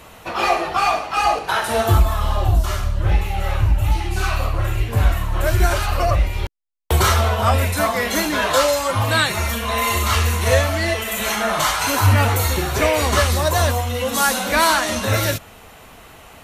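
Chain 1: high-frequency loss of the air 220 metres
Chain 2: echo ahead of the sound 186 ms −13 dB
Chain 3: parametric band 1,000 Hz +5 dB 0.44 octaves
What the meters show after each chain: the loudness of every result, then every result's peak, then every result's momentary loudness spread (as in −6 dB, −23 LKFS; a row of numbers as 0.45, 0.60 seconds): −20.0, −18.5, −18.0 LKFS; −5.0, −4.0, −2.5 dBFS; 5, 5, 6 LU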